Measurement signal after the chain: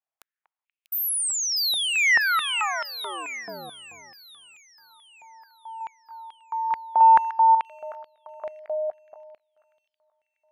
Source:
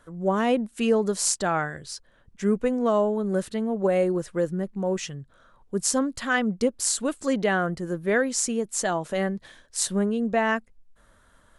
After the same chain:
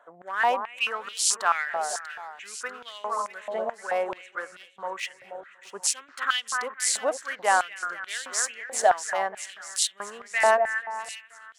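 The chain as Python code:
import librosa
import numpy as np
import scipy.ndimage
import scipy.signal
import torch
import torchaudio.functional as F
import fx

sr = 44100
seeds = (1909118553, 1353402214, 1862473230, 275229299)

y = fx.wiener(x, sr, points=9)
y = fx.echo_split(y, sr, split_hz=2200.0, low_ms=240, high_ms=642, feedback_pct=52, wet_db=-10.0)
y = fx.filter_held_highpass(y, sr, hz=4.6, low_hz=710.0, high_hz=3200.0)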